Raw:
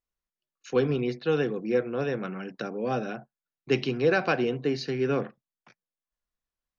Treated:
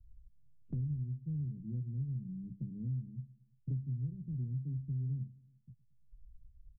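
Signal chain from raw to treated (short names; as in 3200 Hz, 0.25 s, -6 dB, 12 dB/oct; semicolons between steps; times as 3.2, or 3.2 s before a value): inverse Chebyshev low-pass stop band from 670 Hz, stop band 80 dB; feedback echo 0.114 s, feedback 41%, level -24 dB; three-band squash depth 100%; gain +8 dB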